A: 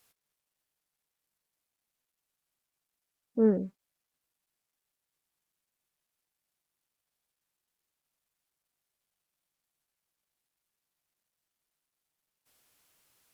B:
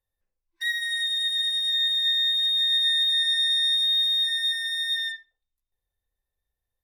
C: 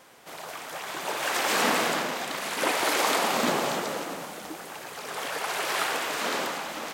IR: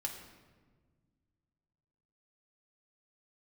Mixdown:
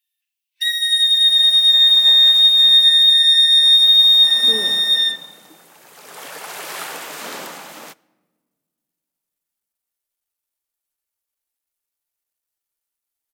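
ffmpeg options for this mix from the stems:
-filter_complex "[0:a]equalizer=f=160:t=o:w=0.77:g=-12,adelay=1100,volume=0.501,asplit=2[s0][s1];[s1]volume=0.447[s2];[1:a]highpass=f=2800:t=q:w=4.6,volume=1.26,asplit=2[s3][s4];[s4]volume=0.501[s5];[2:a]highpass=110,adynamicequalizer=threshold=0.002:dfrequency=160:dqfactor=2.6:tfrequency=160:tqfactor=2.6:attack=5:release=100:ratio=0.375:range=3:mode=boostabove:tftype=bell,adelay=1000,volume=2.37,afade=t=out:st=2.04:d=0.45:silence=0.266073,afade=t=in:st=4.14:d=0.55:silence=0.334965,afade=t=in:st=5.76:d=0.49:silence=0.446684,asplit=2[s6][s7];[s7]volume=0.158[s8];[3:a]atrim=start_sample=2205[s9];[s2][s5][s8]amix=inputs=3:normalize=0[s10];[s10][s9]afir=irnorm=-1:irlink=0[s11];[s0][s3][s6][s11]amix=inputs=4:normalize=0,highshelf=f=7900:g=10"

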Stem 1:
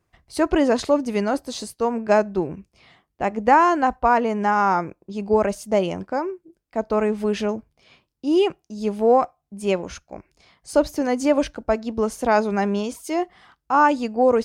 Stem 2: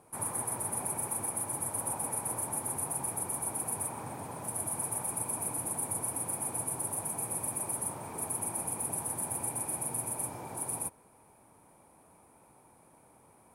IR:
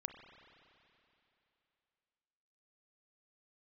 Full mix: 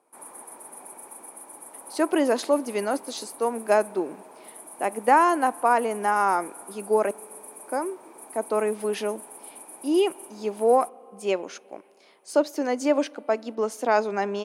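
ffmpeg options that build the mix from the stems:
-filter_complex "[0:a]adelay=1600,volume=0.631,asplit=3[s0][s1][s2];[s0]atrim=end=7.11,asetpts=PTS-STARTPTS,afade=t=out:st=7.106:d=0.004:c=hsin[s3];[s1]atrim=start=7.11:end=7.66,asetpts=PTS-STARTPTS,volume=0[s4];[s2]atrim=start=7.66,asetpts=PTS-STARTPTS,afade=t=in:d=0.004:c=hsin[s5];[s3][s4][s5]concat=n=3:v=0:a=1,asplit=2[s6][s7];[s7]volume=0.211[s8];[1:a]highshelf=f=8900:g=-5.5,volume=0.501[s9];[2:a]atrim=start_sample=2205[s10];[s8][s10]afir=irnorm=-1:irlink=0[s11];[s6][s9][s11]amix=inputs=3:normalize=0,highpass=f=260:w=0.5412,highpass=f=260:w=1.3066"

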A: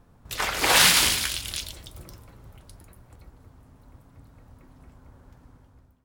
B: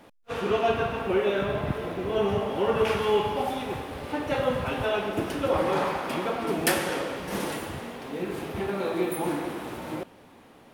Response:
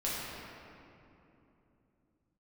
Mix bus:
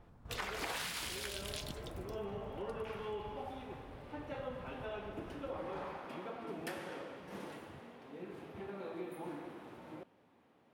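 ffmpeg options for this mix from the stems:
-filter_complex "[0:a]adynamicequalizer=threshold=0.0224:dfrequency=7400:dqfactor=0.7:tfrequency=7400:tqfactor=0.7:attack=5:release=100:ratio=0.375:range=2.5:mode=boostabove:tftype=highshelf,volume=0.631[s0];[1:a]highpass=81,volume=0.168[s1];[s0][s1]amix=inputs=2:normalize=0,highshelf=f=5000:g=-11,acompressor=threshold=0.0141:ratio=16"

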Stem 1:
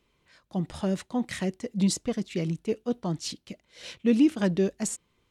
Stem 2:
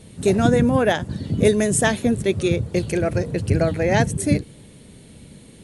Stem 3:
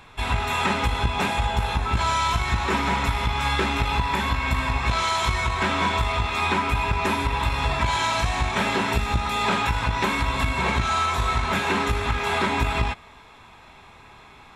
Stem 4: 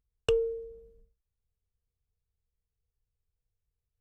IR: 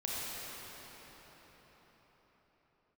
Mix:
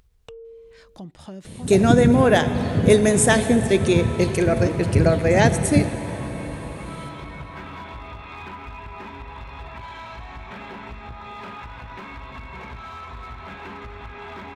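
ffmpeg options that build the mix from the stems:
-filter_complex "[0:a]adelay=450,volume=0.251[s0];[1:a]adelay=1450,volume=1.06,asplit=2[s1][s2];[s2]volume=0.237[s3];[2:a]lowpass=2900,volume=7.94,asoftclip=hard,volume=0.126,adelay=1950,volume=0.15,asplit=2[s4][s5];[s5]volume=0.251[s6];[3:a]highshelf=f=6800:g=-8,alimiter=level_in=1.06:limit=0.0631:level=0:latency=1:release=287,volume=0.944,volume=0.15[s7];[4:a]atrim=start_sample=2205[s8];[s3][s6]amix=inputs=2:normalize=0[s9];[s9][s8]afir=irnorm=-1:irlink=0[s10];[s0][s1][s4][s7][s10]amix=inputs=5:normalize=0,acompressor=mode=upward:threshold=0.0251:ratio=2.5"

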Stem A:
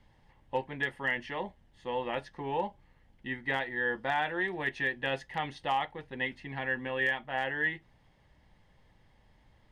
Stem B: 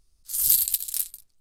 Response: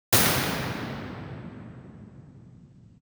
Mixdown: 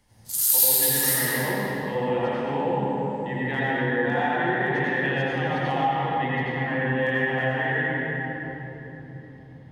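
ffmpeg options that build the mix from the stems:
-filter_complex "[0:a]lowshelf=f=79:g=-5.5,volume=0.891,asplit=2[s0][s1];[s1]volume=0.158[s2];[1:a]highpass=950,volume=1.12,asplit=2[s3][s4];[s4]volume=0.355[s5];[2:a]atrim=start_sample=2205[s6];[s2][s5]amix=inputs=2:normalize=0[s7];[s7][s6]afir=irnorm=-1:irlink=0[s8];[s0][s3][s8]amix=inputs=3:normalize=0,acompressor=threshold=0.0794:ratio=2"

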